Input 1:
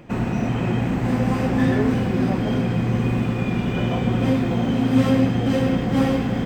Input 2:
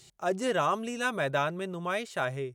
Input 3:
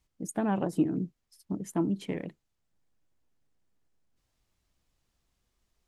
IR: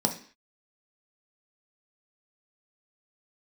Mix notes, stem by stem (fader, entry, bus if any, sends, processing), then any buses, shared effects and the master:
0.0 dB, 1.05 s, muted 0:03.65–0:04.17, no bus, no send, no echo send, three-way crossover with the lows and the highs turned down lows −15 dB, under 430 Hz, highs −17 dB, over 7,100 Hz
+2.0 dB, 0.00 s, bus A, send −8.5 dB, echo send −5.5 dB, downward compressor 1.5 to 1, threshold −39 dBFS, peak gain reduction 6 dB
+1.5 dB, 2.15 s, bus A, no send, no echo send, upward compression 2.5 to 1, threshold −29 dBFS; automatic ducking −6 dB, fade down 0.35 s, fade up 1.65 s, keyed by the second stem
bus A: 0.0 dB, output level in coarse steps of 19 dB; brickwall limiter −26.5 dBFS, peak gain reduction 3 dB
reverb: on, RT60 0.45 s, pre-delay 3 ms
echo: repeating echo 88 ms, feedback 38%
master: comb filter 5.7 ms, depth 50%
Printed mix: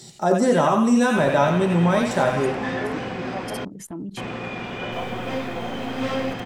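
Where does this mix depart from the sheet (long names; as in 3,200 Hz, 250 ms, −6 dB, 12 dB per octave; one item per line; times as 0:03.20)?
stem 2 +2.0 dB → +10.5 dB
stem 3 +1.5 dB → +12.0 dB
master: missing comb filter 5.7 ms, depth 50%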